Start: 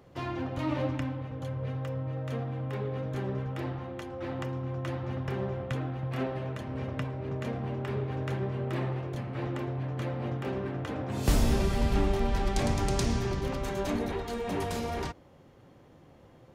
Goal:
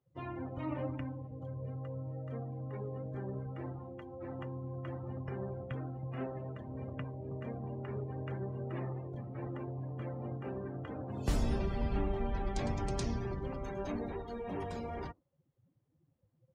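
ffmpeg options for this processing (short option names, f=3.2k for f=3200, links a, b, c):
-af "afftdn=nr=24:nf=-41,volume=-7dB"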